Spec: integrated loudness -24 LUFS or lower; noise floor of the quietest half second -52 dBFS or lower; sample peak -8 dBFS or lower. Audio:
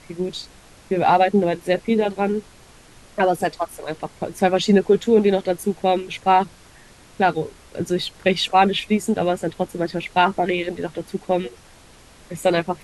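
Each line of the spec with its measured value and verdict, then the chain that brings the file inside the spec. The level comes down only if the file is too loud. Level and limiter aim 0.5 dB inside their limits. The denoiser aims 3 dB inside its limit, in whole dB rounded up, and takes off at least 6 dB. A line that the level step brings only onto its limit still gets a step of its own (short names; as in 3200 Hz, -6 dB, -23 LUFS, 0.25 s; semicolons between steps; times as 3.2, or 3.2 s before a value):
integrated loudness -21.0 LUFS: fail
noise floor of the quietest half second -48 dBFS: fail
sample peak -4.0 dBFS: fail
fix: denoiser 6 dB, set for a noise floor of -48 dBFS; gain -3.5 dB; limiter -8.5 dBFS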